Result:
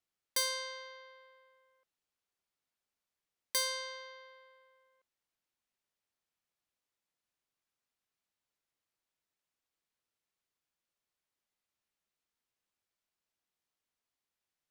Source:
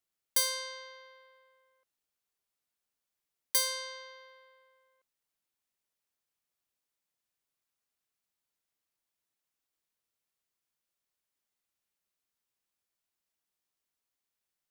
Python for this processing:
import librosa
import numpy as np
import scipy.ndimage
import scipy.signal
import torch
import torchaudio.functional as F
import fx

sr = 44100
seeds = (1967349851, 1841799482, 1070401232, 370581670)

y = fx.high_shelf(x, sr, hz=8500.0, db=-11.0)